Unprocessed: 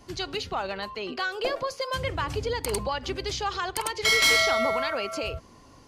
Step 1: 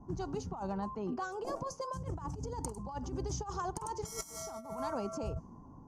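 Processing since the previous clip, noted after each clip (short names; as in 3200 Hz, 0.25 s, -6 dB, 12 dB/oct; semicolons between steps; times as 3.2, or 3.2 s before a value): low-pass opened by the level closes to 1300 Hz, open at -21 dBFS; EQ curve 110 Hz 0 dB, 180 Hz +7 dB, 560 Hz -10 dB, 900 Hz +1 dB, 2100 Hz -26 dB, 4100 Hz -23 dB, 6100 Hz +3 dB; negative-ratio compressor -35 dBFS, ratio -0.5; gain -2.5 dB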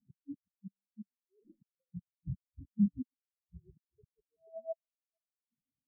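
low-pass sweep 230 Hz -> 640 Hz, 3.99–4.69; flipped gate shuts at -29 dBFS, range -27 dB; spectral expander 4:1; gain +9.5 dB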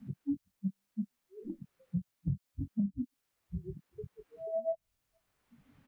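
compressor, threshold -39 dBFS, peak gain reduction 15.5 dB; doubler 21 ms -9 dB; three-band squash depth 70%; gain +12.5 dB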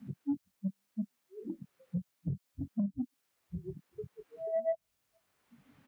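soft clip -24 dBFS, distortion -22 dB; HPF 170 Hz 6 dB/oct; gain +3 dB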